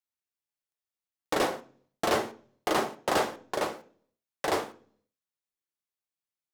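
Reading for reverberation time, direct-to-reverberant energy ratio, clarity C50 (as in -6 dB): 0.45 s, 6.0 dB, 17.0 dB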